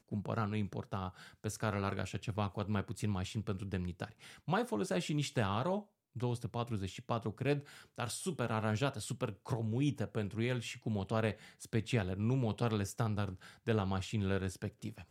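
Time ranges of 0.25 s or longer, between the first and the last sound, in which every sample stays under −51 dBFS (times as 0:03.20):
0:05.83–0:06.16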